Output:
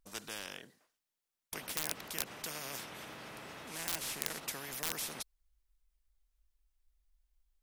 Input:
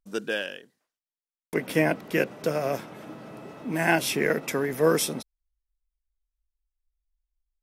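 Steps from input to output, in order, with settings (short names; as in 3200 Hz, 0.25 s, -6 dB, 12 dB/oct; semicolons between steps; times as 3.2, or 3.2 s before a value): 3.67–4.4 CVSD 64 kbps; wrapped overs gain 12.5 dB; spectral compressor 4:1; gain +2 dB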